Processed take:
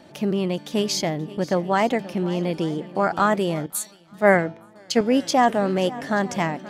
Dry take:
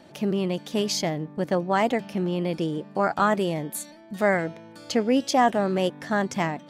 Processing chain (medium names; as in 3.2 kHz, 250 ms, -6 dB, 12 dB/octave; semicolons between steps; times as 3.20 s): shuffle delay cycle 881 ms, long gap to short 1.5:1, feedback 39%, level -18 dB; 3.66–5.01 s: three bands expanded up and down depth 100%; trim +2 dB